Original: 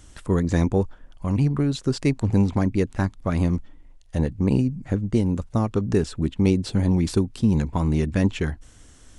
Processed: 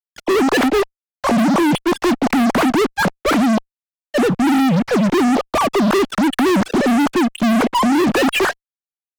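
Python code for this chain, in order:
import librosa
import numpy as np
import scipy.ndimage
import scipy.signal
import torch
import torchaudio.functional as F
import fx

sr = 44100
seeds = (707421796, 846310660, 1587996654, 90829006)

y = fx.sine_speech(x, sr)
y = fx.fuzz(y, sr, gain_db=37.0, gate_db=-43.0)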